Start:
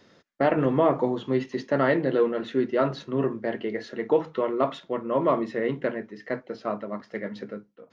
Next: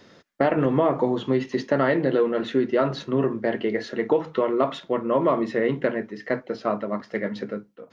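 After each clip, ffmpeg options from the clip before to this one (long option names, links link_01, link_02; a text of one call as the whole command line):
ffmpeg -i in.wav -af "acompressor=threshold=-23dB:ratio=3,volume=5.5dB" out.wav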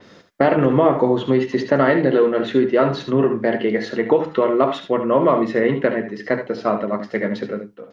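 ffmpeg -i in.wav -af "aecho=1:1:70|80:0.282|0.237,adynamicequalizer=threshold=0.00631:dfrequency=4200:dqfactor=0.7:tfrequency=4200:tqfactor=0.7:attack=5:release=100:ratio=0.375:range=2:mode=cutabove:tftype=highshelf,volume=5dB" out.wav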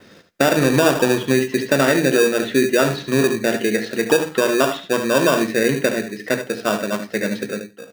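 ffmpeg -i in.wav -filter_complex "[0:a]acrossover=split=970[link_01][link_02];[link_01]acrusher=samples=21:mix=1:aa=0.000001[link_03];[link_03][link_02]amix=inputs=2:normalize=0,aecho=1:1:93:0.0794" out.wav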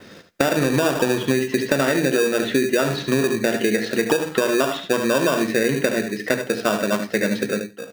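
ffmpeg -i in.wav -af "acompressor=threshold=-19dB:ratio=6,volume=3.5dB" out.wav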